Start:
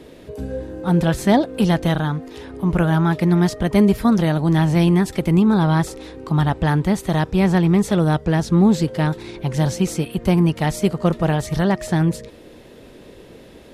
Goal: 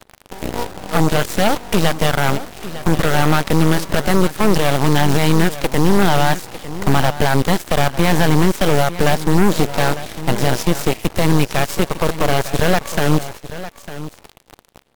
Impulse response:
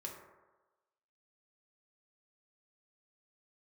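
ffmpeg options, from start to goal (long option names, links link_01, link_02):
-af "lowshelf=frequency=130:gain=-7.5,alimiter=limit=-14.5dB:level=0:latency=1:release=127,acrusher=bits=7:dc=4:mix=0:aa=0.000001,aeval=exprs='0.2*(cos(1*acos(clip(val(0)/0.2,-1,1)))-cos(1*PI/2))+0.0251*(cos(3*acos(clip(val(0)/0.2,-1,1)))-cos(3*PI/2))+0.0891*(cos(4*acos(clip(val(0)/0.2,-1,1)))-cos(4*PI/2))+0.0158*(cos(7*acos(clip(val(0)/0.2,-1,1)))-cos(7*PI/2))':channel_layout=same,aecho=1:1:829:0.2,asetrate=40517,aresample=44100,volume=5.5dB"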